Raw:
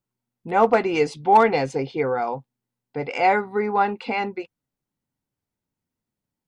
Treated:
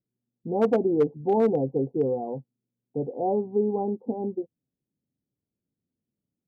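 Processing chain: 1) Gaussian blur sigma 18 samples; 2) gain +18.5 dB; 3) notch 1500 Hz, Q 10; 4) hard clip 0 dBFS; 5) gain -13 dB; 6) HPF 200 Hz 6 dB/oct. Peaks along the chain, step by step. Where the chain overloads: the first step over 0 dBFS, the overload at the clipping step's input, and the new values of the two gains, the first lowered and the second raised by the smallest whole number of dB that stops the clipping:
-13.0, +5.5, +5.5, 0.0, -13.0, -11.0 dBFS; step 2, 5.5 dB; step 2 +12.5 dB, step 5 -7 dB

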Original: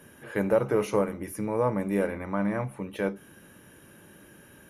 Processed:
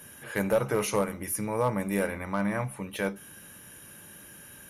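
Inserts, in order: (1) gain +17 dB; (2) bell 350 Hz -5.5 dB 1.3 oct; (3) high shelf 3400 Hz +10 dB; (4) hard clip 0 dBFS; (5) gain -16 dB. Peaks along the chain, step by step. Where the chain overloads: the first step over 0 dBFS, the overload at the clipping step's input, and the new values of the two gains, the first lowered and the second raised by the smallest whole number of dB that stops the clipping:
+6.5, +4.5, +5.5, 0.0, -16.0 dBFS; step 1, 5.5 dB; step 1 +11 dB, step 5 -10 dB

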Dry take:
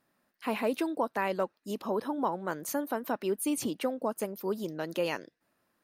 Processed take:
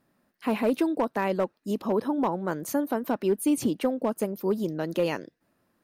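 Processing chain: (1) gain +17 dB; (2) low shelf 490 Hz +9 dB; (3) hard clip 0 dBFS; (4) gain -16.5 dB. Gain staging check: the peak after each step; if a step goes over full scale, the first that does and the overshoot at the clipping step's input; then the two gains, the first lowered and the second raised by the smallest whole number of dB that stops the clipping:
+0.5, +3.5, 0.0, -16.5 dBFS; step 1, 3.5 dB; step 1 +13 dB, step 4 -12.5 dB

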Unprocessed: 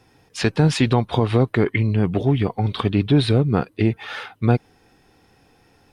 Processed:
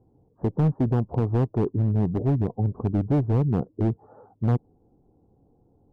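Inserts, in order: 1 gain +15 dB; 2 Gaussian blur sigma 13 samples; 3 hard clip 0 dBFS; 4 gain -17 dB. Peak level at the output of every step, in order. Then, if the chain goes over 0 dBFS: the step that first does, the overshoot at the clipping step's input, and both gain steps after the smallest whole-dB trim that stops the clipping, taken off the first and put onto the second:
+9.0, +7.5, 0.0, -17.0 dBFS; step 1, 7.5 dB; step 1 +7 dB, step 4 -9 dB

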